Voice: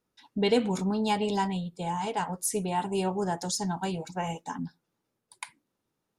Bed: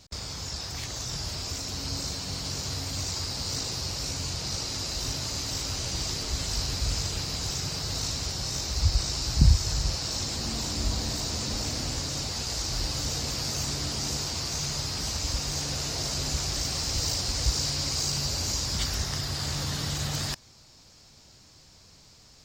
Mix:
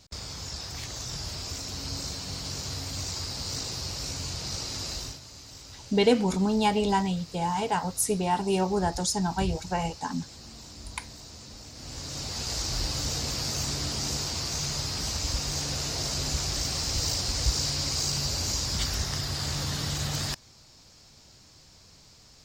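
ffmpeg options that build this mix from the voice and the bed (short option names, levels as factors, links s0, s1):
-filter_complex "[0:a]adelay=5550,volume=1.41[s0];[1:a]volume=4.22,afade=t=out:st=4.93:d=0.27:silence=0.237137,afade=t=in:st=11.74:d=0.78:silence=0.188365[s1];[s0][s1]amix=inputs=2:normalize=0"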